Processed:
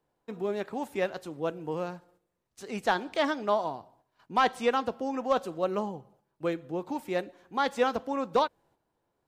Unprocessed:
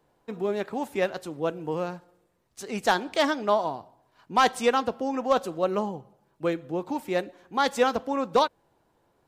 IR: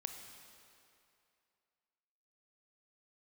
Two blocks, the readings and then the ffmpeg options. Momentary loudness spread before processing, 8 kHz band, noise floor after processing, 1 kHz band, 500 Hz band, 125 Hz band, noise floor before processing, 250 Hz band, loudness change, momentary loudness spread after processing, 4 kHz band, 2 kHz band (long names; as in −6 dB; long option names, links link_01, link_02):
10 LU, −9.0 dB, −80 dBFS, −3.5 dB, −3.5 dB, −3.5 dB, −69 dBFS, −3.5 dB, −3.5 dB, 10 LU, −5.5 dB, −3.5 dB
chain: -filter_complex "[0:a]acrossover=split=4100[link_01][link_02];[link_02]acompressor=threshold=-43dB:ratio=4:attack=1:release=60[link_03];[link_01][link_03]amix=inputs=2:normalize=0,agate=range=-7dB:threshold=-59dB:ratio=16:detection=peak,volume=-3.5dB"